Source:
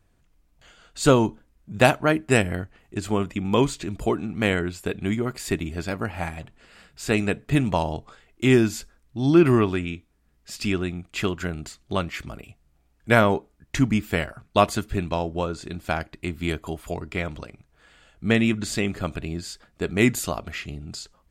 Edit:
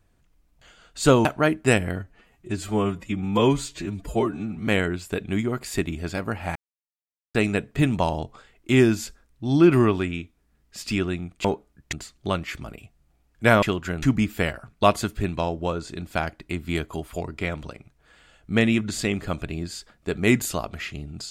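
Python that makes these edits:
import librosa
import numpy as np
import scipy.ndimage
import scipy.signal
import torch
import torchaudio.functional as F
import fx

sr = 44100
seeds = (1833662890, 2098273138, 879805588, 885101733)

y = fx.edit(x, sr, fx.cut(start_s=1.25, length_s=0.64),
    fx.stretch_span(start_s=2.6, length_s=1.81, factor=1.5),
    fx.silence(start_s=6.29, length_s=0.79),
    fx.swap(start_s=11.18, length_s=0.4, other_s=13.28, other_length_s=0.48), tone=tone)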